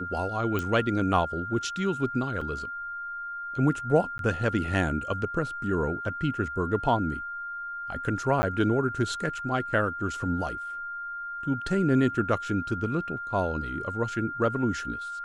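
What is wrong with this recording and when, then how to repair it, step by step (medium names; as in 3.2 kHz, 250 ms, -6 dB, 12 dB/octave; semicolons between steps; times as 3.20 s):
whine 1.4 kHz -33 dBFS
0.59 s: pop -16 dBFS
2.41 s: dropout 4.5 ms
4.18–4.19 s: dropout 12 ms
8.42–8.43 s: dropout 10 ms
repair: de-click; band-stop 1.4 kHz, Q 30; interpolate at 2.41 s, 4.5 ms; interpolate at 4.18 s, 12 ms; interpolate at 8.42 s, 10 ms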